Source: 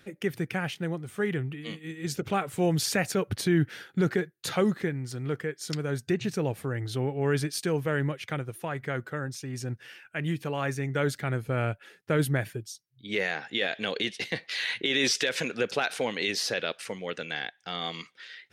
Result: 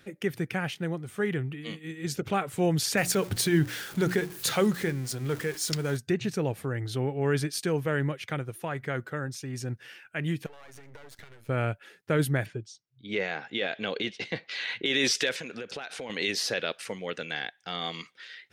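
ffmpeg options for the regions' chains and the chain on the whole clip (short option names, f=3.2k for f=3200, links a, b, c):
-filter_complex "[0:a]asettb=1/sr,asplit=3[a][b][c];[a]atrim=end=2.974[d];[b]atrim=start=2.97:end=5.97,asetpts=PTS-STARTPTS,afade=t=in:d=0.004:c=qsin,afade=t=out:st=2.996:d=0.004:c=qsin,aeval=exprs='val(0)+0.5*0.01*sgn(val(0))':c=same,highshelf=f=4.4k:g=8,bandreject=f=60:t=h:w=6,bandreject=f=120:t=h:w=6,bandreject=f=180:t=h:w=6,bandreject=f=240:t=h:w=6,bandreject=f=300:t=h:w=6,bandreject=f=360:t=h:w=6[e];[c]atrim=start=5.966[f];[d][e]acrossfade=d=0.004:c1=hsin:c2=qsin[g];[g][f]acrossfade=d=0.004:c1=qsin:c2=hsin,asettb=1/sr,asplit=3[h][i][j];[h]atrim=end=10.464[k];[i]atrim=start=10.46:end=11.49,asetpts=PTS-STARTPTS,afade=t=in:d=0.004:c=qsin,afade=t=out:st=1.026:d=0.004:c=qsin,highpass=f=230:p=1,acompressor=threshold=-39dB:ratio=16:attack=3.2:release=140:knee=1:detection=peak,aeval=exprs='max(val(0),0)':c=same[l];[j]atrim=start=11.486[m];[k][l]acrossfade=d=0.004:c1=hsin:c2=qsin[n];[n][m]acrossfade=d=0.004:c1=qsin:c2=hsin,asettb=1/sr,asplit=3[o][p][q];[o]atrim=end=12.464[r];[p]atrim=start=12.46:end=14.86,asetpts=PTS-STARTPTS,afade=t=in:d=0.004:c=qsin,afade=t=out:st=2.396:d=0.004:c=qsin,lowpass=f=7.9k:w=0.5412,lowpass=f=7.9k:w=1.3066,highshelf=f=4.6k:g=-9,bandreject=f=1.8k:w=14[s];[q]atrim=start=14.856[t];[r][s]acrossfade=d=0.004:c1=hsin:c2=qsin[u];[u][t]acrossfade=d=0.004:c1=qsin:c2=hsin,asettb=1/sr,asplit=3[v][w][x];[v]atrim=end=15.364[y];[w]atrim=start=15.36:end=16.1,asetpts=PTS-STARTPTS,afade=t=in:d=0.004:c=qsin,afade=t=out:st=0.736:d=0.004:c=qsin,acompressor=threshold=-34dB:ratio=6:attack=3.2:release=140:knee=1:detection=peak,lowpass=9.1k[z];[x]atrim=start=16.096[aa];[y][z]acrossfade=d=0.004:c1=hsin:c2=qsin[ab];[ab][aa]acrossfade=d=0.004:c1=qsin:c2=hsin"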